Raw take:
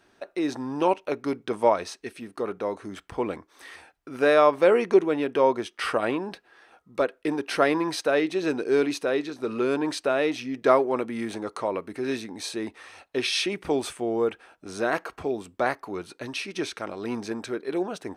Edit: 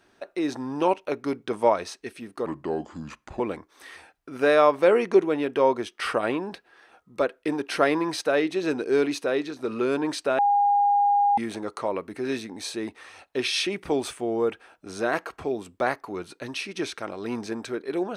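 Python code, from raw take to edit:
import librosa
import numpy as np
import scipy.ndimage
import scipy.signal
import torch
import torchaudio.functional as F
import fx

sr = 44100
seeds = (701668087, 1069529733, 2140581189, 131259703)

y = fx.edit(x, sr, fx.speed_span(start_s=2.46, length_s=0.73, speed=0.78),
    fx.bleep(start_s=10.18, length_s=0.99, hz=813.0, db=-17.0), tone=tone)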